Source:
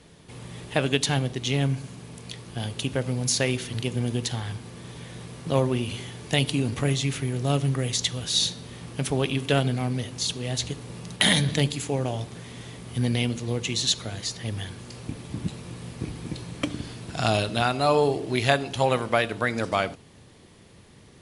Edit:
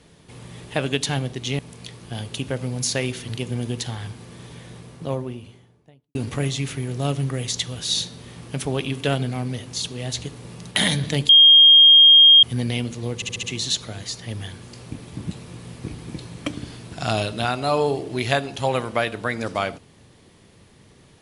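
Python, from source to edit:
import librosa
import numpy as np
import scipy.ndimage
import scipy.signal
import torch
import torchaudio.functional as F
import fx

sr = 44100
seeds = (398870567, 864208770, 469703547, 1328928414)

y = fx.studio_fade_out(x, sr, start_s=4.86, length_s=1.74)
y = fx.edit(y, sr, fx.cut(start_s=1.59, length_s=0.45),
    fx.bleep(start_s=11.74, length_s=1.14, hz=3230.0, db=-7.0),
    fx.stutter(start_s=13.6, slice_s=0.07, count=5), tone=tone)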